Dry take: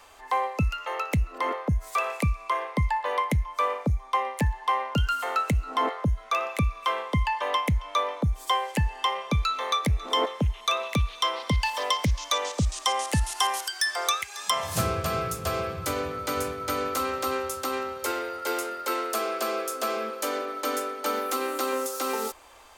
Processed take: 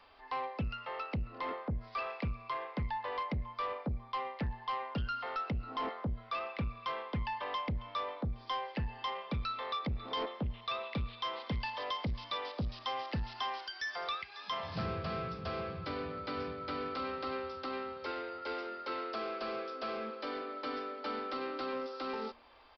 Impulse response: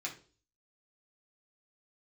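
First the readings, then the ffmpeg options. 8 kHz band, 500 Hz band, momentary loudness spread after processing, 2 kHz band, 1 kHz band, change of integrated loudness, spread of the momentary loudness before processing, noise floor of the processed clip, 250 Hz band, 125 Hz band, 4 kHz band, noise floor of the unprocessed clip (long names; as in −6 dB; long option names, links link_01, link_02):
below −30 dB, −10.0 dB, 3 LU, −10.5 dB, −10.5 dB, −11.0 dB, 4 LU, −53 dBFS, −9.0 dB, −11.5 dB, −12.0 dB, −45 dBFS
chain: -af "equalizer=frequency=200:width_type=o:width=0.97:gain=6.5,bandreject=frequency=117.4:width_type=h:width=4,bandreject=frequency=234.8:width_type=h:width=4,bandreject=frequency=352.2:width_type=h:width=4,bandreject=frequency=469.6:width_type=h:width=4,bandreject=frequency=587:width_type=h:width=4,bandreject=frequency=704.4:width_type=h:width=4,aresample=11025,asoftclip=type=tanh:threshold=-22dB,aresample=44100,volume=-8.5dB"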